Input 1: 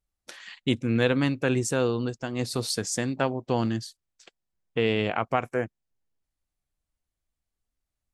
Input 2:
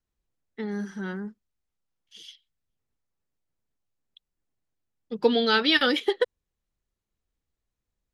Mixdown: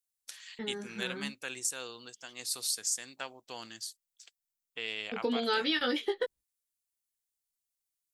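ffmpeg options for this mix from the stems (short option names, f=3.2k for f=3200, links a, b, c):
-filter_complex "[0:a]aderivative,volume=3dB[a];[1:a]agate=range=-23dB:threshold=-43dB:ratio=16:detection=peak,flanger=delay=16:depth=2.3:speed=0.37,volume=-2dB[b];[a][b]amix=inputs=2:normalize=0,alimiter=limit=-20dB:level=0:latency=1:release=151"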